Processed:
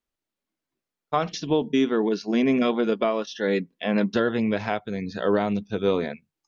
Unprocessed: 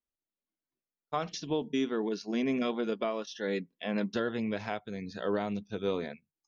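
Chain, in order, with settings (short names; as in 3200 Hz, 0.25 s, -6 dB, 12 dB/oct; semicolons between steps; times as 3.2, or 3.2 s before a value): high shelf 6300 Hz -9 dB; gain +9 dB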